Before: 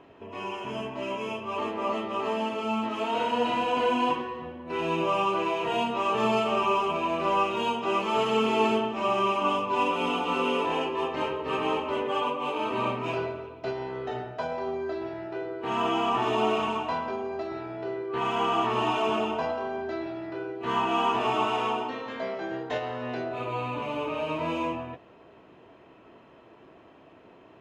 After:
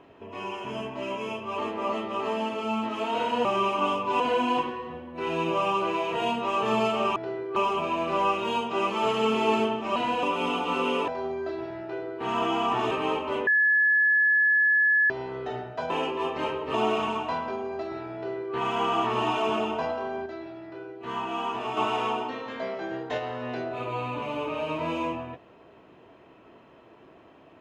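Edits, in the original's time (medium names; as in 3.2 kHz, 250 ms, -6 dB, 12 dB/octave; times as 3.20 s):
3.45–3.72 s: swap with 9.08–9.83 s
10.68–11.52 s: swap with 14.51–16.34 s
12.08–13.71 s: bleep 1.71 kHz -18 dBFS
17.75–18.15 s: copy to 6.68 s
19.86–21.37 s: gain -5.5 dB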